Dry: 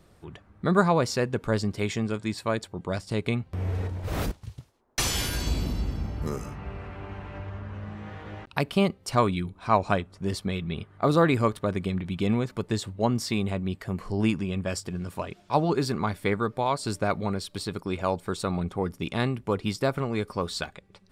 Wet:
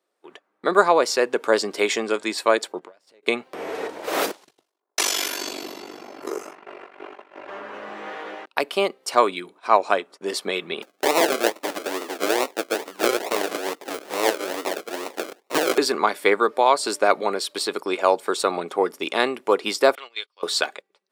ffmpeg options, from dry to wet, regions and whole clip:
ffmpeg -i in.wav -filter_complex "[0:a]asettb=1/sr,asplit=3[link_01][link_02][link_03];[link_01]atrim=end=2.794[link_04];[link_02]atrim=start=2.79:end=3.23,asetpts=PTS-STARTPTS,afade=type=in:duration=0.004:curve=qsin,afade=type=out:start_time=0.436:duration=0.004:curve=qsin,aeval=exprs='if(lt(val(0),0),0.447*val(0),val(0))':channel_layout=same,highshelf=frequency=4400:gain=-9,acompressor=threshold=-44dB:ratio=8:attack=3.2:release=140:knee=1:detection=peak[link_05];[link_03]atrim=start=3.226[link_06];[link_04][link_05]acrossfade=duration=0.004:curve1=hsin:curve2=qsin[link_07];[link_07][link_06]acrossfade=duration=0.004:curve1=qsin:curve2=hsin,asettb=1/sr,asplit=3[link_08][link_09][link_10];[link_08]atrim=end=4.434[link_11];[link_09]atrim=start=4.43:end=7.49,asetpts=PTS-STARTPTS,afade=type=in:duration=0.004:curve=qsin,afade=type=out:start_time=3.056:duration=0.004:curve=qsin,aecho=1:1:2.9:0.35,atrim=end_sample=134946,flanger=delay=4.5:depth=8.6:regen=-22:speed=1.8:shape=triangular,aeval=exprs='val(0)*sin(2*PI*24*n/s)':channel_layout=same[link_12];[link_10]atrim=start=7.486[link_13];[link_11][link_12]acrossfade=duration=0.004:curve1=hsin:curve2=qsin[link_14];[link_14][link_13]acrossfade=duration=0.004:curve1=qsin:curve2=hsin,asettb=1/sr,asplit=3[link_15][link_16][link_17];[link_15]atrim=end=10.824[link_18];[link_16]atrim=start=10.82:end=15.78,asetpts=PTS-STARTPTS,afade=type=in:duration=0.004:curve=qsin,afade=type=out:start_time=4.956:duration=0.004:curve=qsin,acrusher=samples=38:mix=1:aa=0.000001:lfo=1:lforange=22.8:lforate=2.3,aeval=exprs='abs(val(0))':channel_layout=same[link_19];[link_17]atrim=start=15.776[link_20];[link_18][link_19]acrossfade=duration=0.004:curve1=hsin:curve2=qsin[link_21];[link_21][link_20]acrossfade=duration=0.004:curve1=qsin:curve2=hsin,asettb=1/sr,asplit=3[link_22][link_23][link_24];[link_22]atrim=end=19.954[link_25];[link_23]atrim=start=19.95:end=20.43,asetpts=PTS-STARTPTS,afade=type=in:duration=0.004:curve=qsin,afade=type=out:start_time=0.476:duration=0.004:curve=qsin,agate=range=-16dB:threshold=-37dB:ratio=16:release=100:detection=peak,acontrast=23,bandpass=frequency=3300:width_type=q:width=3.8[link_26];[link_24]atrim=start=20.426[link_27];[link_25][link_26]acrossfade=duration=0.004:curve1=hsin:curve2=qsin[link_28];[link_28][link_27]acrossfade=duration=0.004:curve1=qsin:curve2=hsin,agate=range=-15dB:threshold=-43dB:ratio=16:detection=peak,highpass=frequency=350:width=0.5412,highpass=frequency=350:width=1.3066,dynaudnorm=framelen=150:gausssize=5:maxgain=11dB" out.wav

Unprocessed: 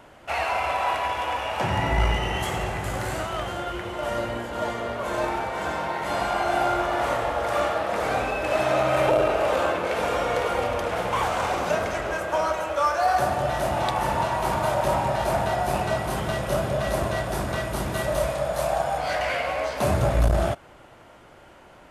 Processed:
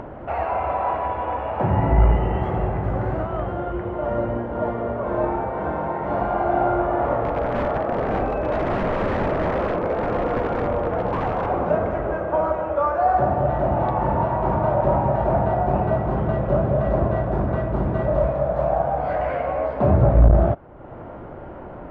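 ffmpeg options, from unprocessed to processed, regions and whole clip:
ffmpeg -i in.wav -filter_complex "[0:a]asettb=1/sr,asplit=3[link_01][link_02][link_03];[link_01]atrim=end=7.244[link_04];[link_02]atrim=start=7.24:end=11.46,asetpts=PTS-STARTPTS,afade=type=in:duration=0.004:curve=qsin,afade=type=out:start_time=4.216:duration=0.004:curve=qsin,aeval=exprs='(mod(7.94*val(0)+1,2)-1)/7.94':channel_layout=same,asplit=2[link_05][link_06];[link_06]adelay=41,volume=-14dB[link_07];[link_05][link_07]amix=inputs=2:normalize=0,atrim=end_sample=186102[link_08];[link_03]atrim=start=11.456[link_09];[link_04][link_08]acrossfade=duration=0.004:curve1=hsin:curve2=qsin[link_10];[link_10][link_09]acrossfade=duration=0.004:curve1=qsin:curve2=hsin,lowpass=1600,tiltshelf=frequency=1200:gain=7.5,acompressor=mode=upward:threshold=-26dB:ratio=2.5" out.wav

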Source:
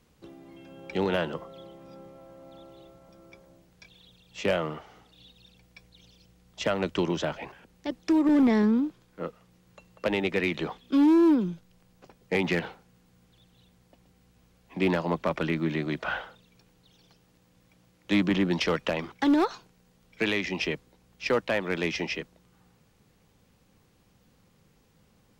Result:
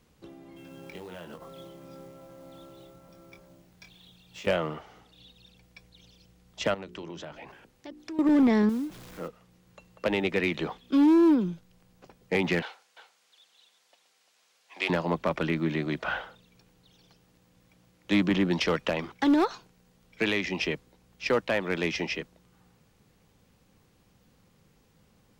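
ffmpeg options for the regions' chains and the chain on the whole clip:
ffmpeg -i in.wav -filter_complex "[0:a]asettb=1/sr,asplit=3[link_01][link_02][link_03];[link_01]atrim=end=0.564[link_04];[link_02]atrim=start=0.56:end=4.47,asetpts=PTS-STARTPTS,afade=type=in:duration=0.004:curve=qsin,afade=type=out:start_time=3.906:duration=0.004:curve=qsin,acompressor=threshold=-40dB:ratio=8:attack=3.2:release=140:knee=1:detection=peak,acrusher=bits=4:mode=log:mix=0:aa=0.000001,asplit=2[link_05][link_06];[link_06]adelay=23,volume=-6dB[link_07];[link_05][link_07]amix=inputs=2:normalize=0,atrim=end_sample=172431[link_08];[link_03]atrim=start=4.466[link_09];[link_04][link_08]acrossfade=duration=0.004:curve1=hsin:curve2=qsin[link_10];[link_10][link_09]acrossfade=duration=0.004:curve1=qsin:curve2=hsin,asettb=1/sr,asplit=3[link_11][link_12][link_13];[link_11]atrim=end=6.744[link_14];[link_12]atrim=start=6.74:end=8.19,asetpts=PTS-STARTPTS,afade=type=in:duration=0.004:curve=qsin,afade=type=out:start_time=1.446:duration=0.004:curve=qsin,bandreject=frequency=60:width_type=h:width=6,bandreject=frequency=120:width_type=h:width=6,bandreject=frequency=180:width_type=h:width=6,bandreject=frequency=240:width_type=h:width=6,bandreject=frequency=300:width_type=h:width=6,bandreject=frequency=360:width_type=h:width=6,bandreject=frequency=420:width_type=h:width=6,acompressor=threshold=-43dB:ratio=2.5:attack=3.2:release=140:knee=1:detection=peak[link_15];[link_13]atrim=start=8.186[link_16];[link_14][link_15]acrossfade=duration=0.004:curve1=hsin:curve2=qsin[link_17];[link_17][link_16]acrossfade=duration=0.004:curve1=qsin:curve2=hsin,asettb=1/sr,asplit=3[link_18][link_19][link_20];[link_18]atrim=end=8.694[link_21];[link_19]atrim=start=8.69:end=9.28,asetpts=PTS-STARTPTS,afade=type=in:duration=0.004:curve=qsin,afade=type=out:start_time=0.586:duration=0.004:curve=qsin,aeval=exprs='val(0)+0.5*0.0075*sgn(val(0))':channel_layout=same,acompressor=threshold=-38dB:ratio=1.5:attack=3.2:release=140:knee=1:detection=peak,acrusher=bits=6:mode=log:mix=0:aa=0.000001[link_22];[link_20]atrim=start=9.276[link_23];[link_21][link_22]acrossfade=duration=0.004:curve1=hsin:curve2=qsin[link_24];[link_24][link_23]acrossfade=duration=0.004:curve1=qsin:curve2=hsin,asettb=1/sr,asplit=3[link_25][link_26][link_27];[link_25]atrim=end=12.624[link_28];[link_26]atrim=start=12.62:end=14.9,asetpts=PTS-STARTPTS,afade=type=in:duration=0.004:curve=qsin,afade=type=out:start_time=2.276:duration=0.004:curve=qsin,highpass=590,lowpass=5500,aemphasis=mode=production:type=riaa,aecho=1:1:346:0.251,atrim=end_sample=100548[link_29];[link_27]atrim=start=14.896[link_30];[link_28][link_29]acrossfade=duration=0.004:curve1=hsin:curve2=qsin[link_31];[link_31][link_30]acrossfade=duration=0.004:curve1=qsin:curve2=hsin" out.wav

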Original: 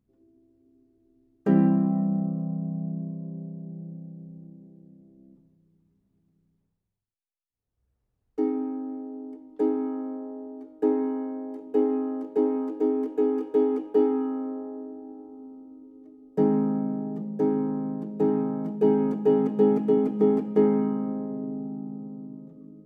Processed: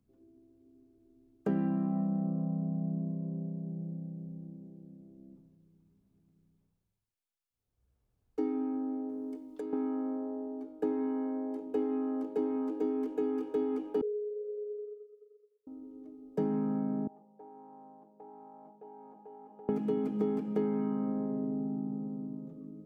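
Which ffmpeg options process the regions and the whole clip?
ffmpeg -i in.wav -filter_complex "[0:a]asettb=1/sr,asplit=3[link_01][link_02][link_03];[link_01]atrim=end=9.094[link_04];[link_02]atrim=start=9.09:end=9.73,asetpts=PTS-STARTPTS,afade=type=in:duration=0.004:curve=qsin,afade=type=out:start_time=0.636:duration=0.004:curve=qsin,highshelf=frequency=2500:gain=11,bandreject=frequency=810:width=9.5,acompressor=threshold=-34dB:ratio=16:attack=3.2:release=140:knee=1:detection=peak[link_05];[link_03]atrim=start=9.726[link_06];[link_04][link_05]acrossfade=duration=0.004:curve1=hsin:curve2=qsin[link_07];[link_07][link_06]acrossfade=duration=0.004:curve1=qsin:curve2=hsin,asettb=1/sr,asplit=3[link_08][link_09][link_10];[link_08]atrim=end=14.014[link_11];[link_09]atrim=start=14.01:end=15.67,asetpts=PTS-STARTPTS,afade=type=in:duration=0.004:curve=qsin,afade=type=out:start_time=1.656:duration=0.004:curve=qsin,aeval=exprs='0.266*sin(PI/2*1.78*val(0)/0.266)':channel_layout=same,asuperpass=centerf=460:order=8:qfactor=6,agate=range=-33dB:threshold=-40dB:ratio=3:release=100:detection=peak[link_12];[link_10]atrim=start=15.666[link_13];[link_11][link_12]acrossfade=duration=0.004:curve1=hsin:curve2=qsin[link_14];[link_14][link_13]acrossfade=duration=0.004:curve1=qsin:curve2=hsin,asettb=1/sr,asplit=3[link_15][link_16][link_17];[link_15]atrim=end=17.074[link_18];[link_16]atrim=start=17.07:end=19.69,asetpts=PTS-STARTPTS,afade=type=in:duration=0.004:curve=qsin,afade=type=out:start_time=2.616:duration=0.004:curve=qsin,lowpass=frequency=810:width_type=q:width=4.1,aderivative,acompressor=threshold=-48dB:ratio=4:attack=3.2:release=140:knee=1:detection=peak[link_19];[link_17]atrim=start=19.686[link_20];[link_18][link_19]acrossfade=duration=0.004:curve1=hsin:curve2=qsin[link_21];[link_21][link_20]acrossfade=duration=0.004:curve1=qsin:curve2=hsin,bandreject=frequency=1900:width=15,acrossover=split=200|1200[link_22][link_23][link_24];[link_22]acompressor=threshold=-37dB:ratio=4[link_25];[link_23]acompressor=threshold=-33dB:ratio=4[link_26];[link_24]acompressor=threshold=-53dB:ratio=4[link_27];[link_25][link_26][link_27]amix=inputs=3:normalize=0" out.wav

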